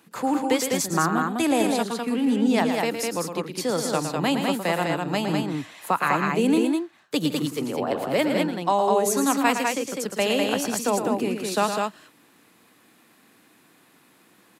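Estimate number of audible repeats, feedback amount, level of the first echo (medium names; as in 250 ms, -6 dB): 3, no regular repeats, -8.0 dB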